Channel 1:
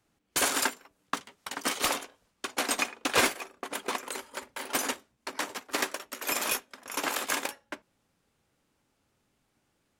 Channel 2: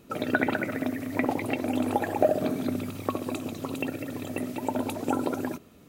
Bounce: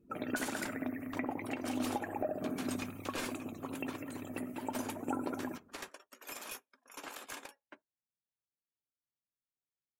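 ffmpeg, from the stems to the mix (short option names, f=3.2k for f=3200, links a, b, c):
-filter_complex "[0:a]equalizer=f=120:w=4.3:g=6,bandreject=f=2k:w=22,aeval=exprs='clip(val(0),-1,0.0668)':c=same,volume=-15dB[a];[1:a]equalizer=f=125:t=o:w=1:g=-6,equalizer=f=500:t=o:w=1:g=-5,equalizer=f=4k:t=o:w=1:g=-8,alimiter=limit=-16.5dB:level=0:latency=1:release=315,volume=-6dB[b];[a][b]amix=inputs=2:normalize=0,afftdn=nr=20:nf=-60"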